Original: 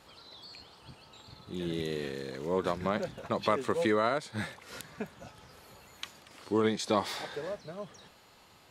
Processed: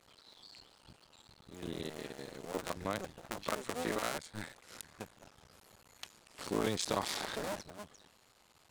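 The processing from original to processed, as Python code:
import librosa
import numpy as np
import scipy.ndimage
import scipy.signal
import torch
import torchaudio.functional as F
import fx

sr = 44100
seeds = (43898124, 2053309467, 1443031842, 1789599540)

y = fx.cycle_switch(x, sr, every=2, mode='muted')
y = fx.peak_eq(y, sr, hz=8600.0, db=6.0, octaves=1.2)
y = fx.env_flatten(y, sr, amount_pct=50, at=(6.38, 7.61), fade=0.02)
y = y * 10.0 ** (-5.5 / 20.0)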